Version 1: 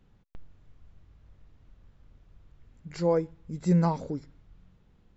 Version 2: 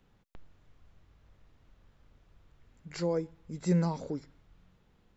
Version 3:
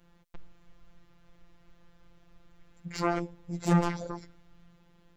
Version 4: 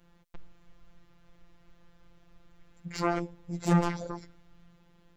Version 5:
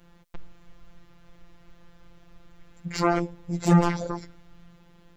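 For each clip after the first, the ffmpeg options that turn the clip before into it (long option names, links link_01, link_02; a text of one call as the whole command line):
ffmpeg -i in.wav -filter_complex "[0:a]lowshelf=frequency=280:gain=-8,acrossover=split=370|3700[link_01][link_02][link_03];[link_02]alimiter=level_in=6dB:limit=-24dB:level=0:latency=1:release=200,volume=-6dB[link_04];[link_01][link_04][link_03]amix=inputs=3:normalize=0,volume=1.5dB" out.wav
ffmpeg -i in.wav -af "aeval=exprs='0.133*(cos(1*acos(clip(val(0)/0.133,-1,1)))-cos(1*PI/2))+0.0668*(cos(7*acos(clip(val(0)/0.133,-1,1)))-cos(7*PI/2))':channel_layout=same,afftfilt=real='hypot(re,im)*cos(PI*b)':imag='0':win_size=1024:overlap=0.75" out.wav
ffmpeg -i in.wav -af anull out.wav
ffmpeg -i in.wav -af "asoftclip=type=tanh:threshold=-10.5dB,volume=6.5dB" out.wav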